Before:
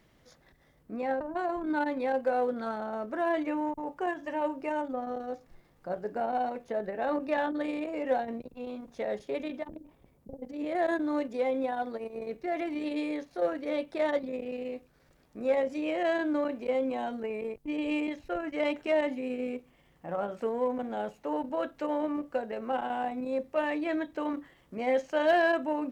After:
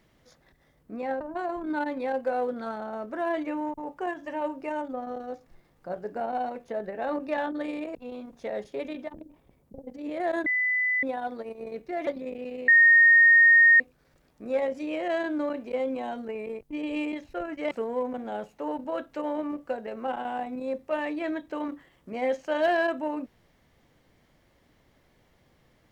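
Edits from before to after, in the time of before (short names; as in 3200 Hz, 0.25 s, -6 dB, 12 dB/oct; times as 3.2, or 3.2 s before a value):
7.95–8.5 cut
11.01–11.58 bleep 2000 Hz -22.5 dBFS
12.62–14.14 cut
14.75 add tone 1850 Hz -13 dBFS 1.12 s
18.66–20.36 cut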